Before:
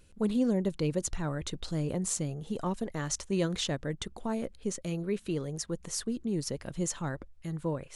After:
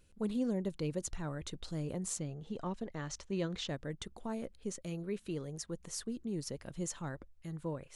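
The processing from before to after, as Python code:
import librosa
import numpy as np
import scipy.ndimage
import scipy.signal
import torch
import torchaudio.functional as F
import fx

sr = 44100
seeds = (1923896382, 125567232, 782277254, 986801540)

y = fx.lowpass(x, sr, hz=5400.0, slope=12, at=(2.18, 3.69))
y = y * librosa.db_to_amplitude(-6.5)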